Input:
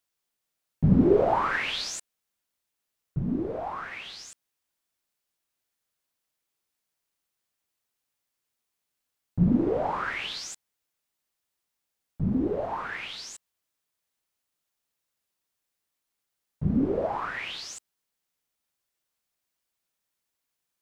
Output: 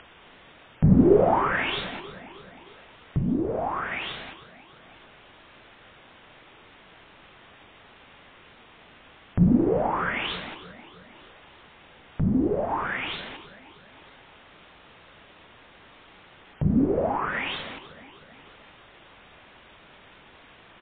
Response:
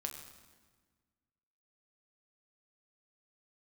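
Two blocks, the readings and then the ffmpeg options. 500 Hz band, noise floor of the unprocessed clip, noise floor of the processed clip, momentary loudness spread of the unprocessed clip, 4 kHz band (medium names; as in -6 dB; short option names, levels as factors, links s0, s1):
+3.0 dB, -83 dBFS, -53 dBFS, 18 LU, +1.5 dB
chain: -filter_complex "[0:a]aemphasis=mode=reproduction:type=75fm,acompressor=mode=upward:threshold=0.0631:ratio=2.5,aeval=exprs='0.398*(cos(1*acos(clip(val(0)/0.398,-1,1)))-cos(1*PI/2))+0.00708*(cos(4*acos(clip(val(0)/0.398,-1,1)))-cos(4*PI/2))+0.00224*(cos(5*acos(clip(val(0)/0.398,-1,1)))-cos(5*PI/2))':c=same,asplit=2[s0][s1];[s1]aecho=0:1:312|624|936|1248|1560:0.133|0.076|0.0433|0.0247|0.0141[s2];[s0][s2]amix=inputs=2:normalize=0,volume=1.33" -ar 8000 -c:a libmp3lame -b:a 16k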